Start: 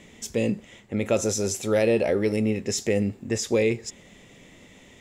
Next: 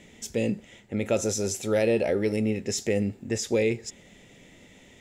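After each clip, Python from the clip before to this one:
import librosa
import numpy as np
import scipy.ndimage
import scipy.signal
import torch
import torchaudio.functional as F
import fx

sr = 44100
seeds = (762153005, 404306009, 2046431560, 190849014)

y = fx.notch(x, sr, hz=1100.0, q=5.9)
y = y * librosa.db_to_amplitude(-2.0)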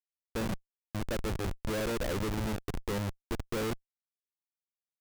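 y = scipy.ndimage.median_filter(x, 5, mode='constant')
y = fx.schmitt(y, sr, flips_db=-25.0)
y = y * librosa.db_to_amplitude(-3.5)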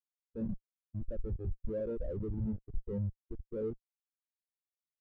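y = fx.spectral_expand(x, sr, expansion=2.5)
y = y * librosa.db_to_amplitude(1.0)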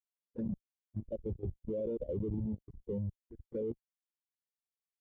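y = fx.env_flanger(x, sr, rest_ms=4.4, full_db=-34.5)
y = fx.notch_comb(y, sr, f0_hz=1300.0)
y = fx.level_steps(y, sr, step_db=14)
y = y * librosa.db_to_amplitude(7.0)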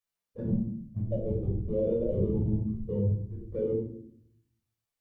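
y = fx.room_shoebox(x, sr, seeds[0], volume_m3=940.0, walls='furnished', distance_m=5.9)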